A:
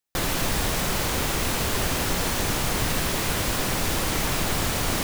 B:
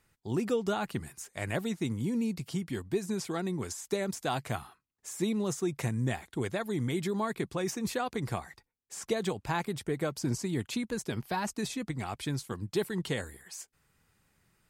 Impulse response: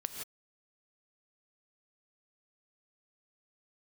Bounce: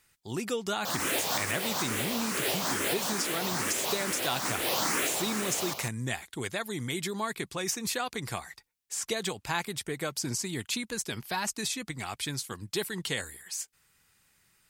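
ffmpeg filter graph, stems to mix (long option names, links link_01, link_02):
-filter_complex "[0:a]highpass=290,asplit=2[link_01][link_02];[link_02]afreqshift=2.3[link_03];[link_01][link_03]amix=inputs=2:normalize=1,adelay=700,volume=1.5dB,asplit=2[link_04][link_05];[link_05]volume=-13.5dB[link_06];[1:a]tiltshelf=frequency=1300:gain=-6.5,volume=2dB,asplit=2[link_07][link_08];[link_08]apad=whole_len=252891[link_09];[link_04][link_09]sidechaincompress=threshold=-39dB:ratio=4:attack=42:release=165[link_10];[link_06]aecho=0:1:147:1[link_11];[link_10][link_07][link_11]amix=inputs=3:normalize=0"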